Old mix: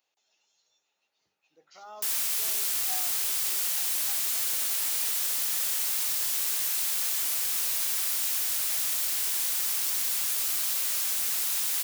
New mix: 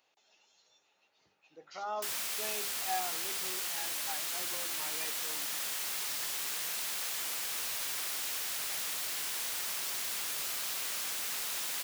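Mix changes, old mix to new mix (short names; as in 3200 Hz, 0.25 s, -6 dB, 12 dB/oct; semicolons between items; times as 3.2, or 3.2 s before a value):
speech +8.5 dB; master: add high shelf 5200 Hz -10.5 dB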